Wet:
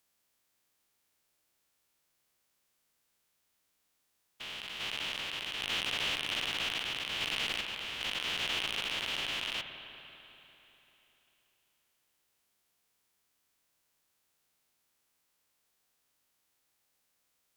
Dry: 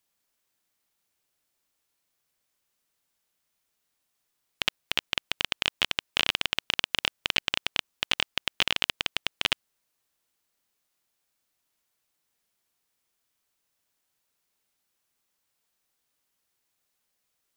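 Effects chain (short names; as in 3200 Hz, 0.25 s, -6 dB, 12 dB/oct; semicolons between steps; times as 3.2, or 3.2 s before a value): stepped spectrum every 0.4 s; spring tank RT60 3.4 s, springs 49/56 ms, chirp 75 ms, DRR 7.5 dB; tube stage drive 25 dB, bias 0.4; gain +4 dB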